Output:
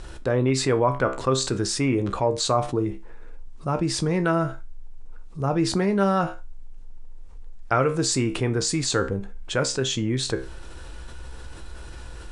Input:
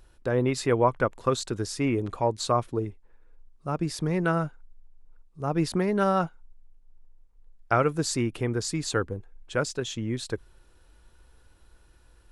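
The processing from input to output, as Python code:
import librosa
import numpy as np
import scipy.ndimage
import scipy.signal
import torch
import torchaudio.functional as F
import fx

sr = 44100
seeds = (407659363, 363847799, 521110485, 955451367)

y = scipy.signal.sosfilt(scipy.signal.butter(8, 9600.0, 'lowpass', fs=sr, output='sos'), x)
y = fx.comb_fb(y, sr, f0_hz=66.0, decay_s=0.24, harmonics='all', damping=0.0, mix_pct=70)
y = fx.env_flatten(y, sr, amount_pct=50)
y = y * librosa.db_to_amplitude(4.5)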